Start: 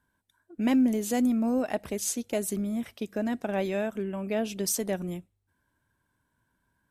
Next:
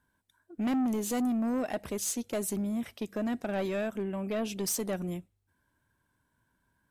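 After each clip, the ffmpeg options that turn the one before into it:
-af "asoftclip=type=tanh:threshold=0.0531"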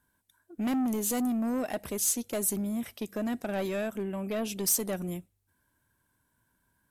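-af "equalizer=f=13000:w=0.52:g=9.5"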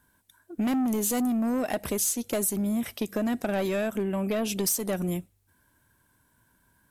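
-af "acompressor=threshold=0.0251:ratio=6,volume=2.37"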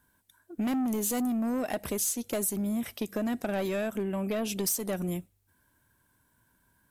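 -af "equalizer=f=15000:w=5.9:g=8,volume=0.708"

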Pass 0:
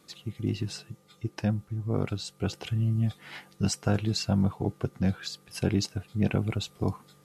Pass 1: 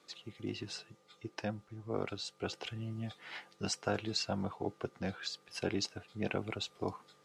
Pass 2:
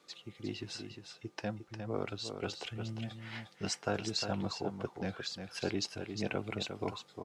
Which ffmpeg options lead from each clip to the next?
-filter_complex "[0:a]acrossover=split=320 7400:gain=0.2 1 0.158[s0][s1][s2];[s0][s1][s2]amix=inputs=3:normalize=0,volume=0.75"
-af "aecho=1:1:355:0.422"

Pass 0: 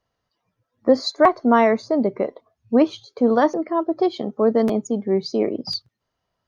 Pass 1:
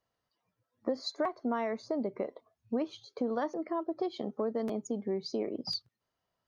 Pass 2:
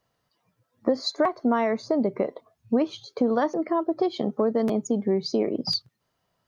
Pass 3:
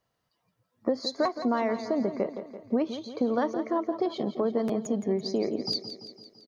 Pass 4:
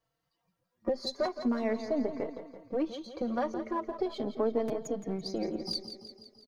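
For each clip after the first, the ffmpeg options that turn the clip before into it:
-af "lowshelf=f=93:g=-7,acompressor=threshold=0.0631:ratio=4,volume=0.473"
-af "equalizer=f=150:t=o:w=0.73:g=5,volume=2.82"
-af "aecho=1:1:169|338|507|676|845|1014:0.282|0.158|0.0884|0.0495|0.0277|0.0155,volume=0.631"
-filter_complex "[0:a]aeval=exprs='if(lt(val(0),0),0.708*val(0),val(0))':c=same,asplit=2[s0][s1];[s1]adelay=4,afreqshift=0.41[s2];[s0][s2]amix=inputs=2:normalize=1"

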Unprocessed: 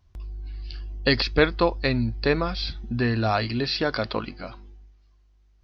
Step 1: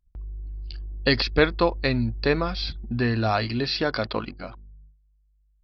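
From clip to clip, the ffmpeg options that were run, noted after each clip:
-af "anlmdn=0.158"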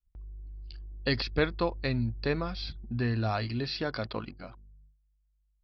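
-af "adynamicequalizer=threshold=0.0158:dfrequency=120:dqfactor=0.86:tfrequency=120:tqfactor=0.86:attack=5:release=100:ratio=0.375:range=2.5:mode=boostabove:tftype=bell,volume=0.376"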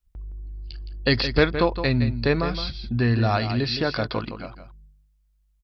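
-af "aecho=1:1:166:0.316,volume=2.51"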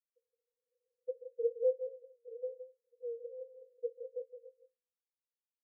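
-af "asuperpass=centerf=490:order=12:qfactor=7.9,volume=0.562"

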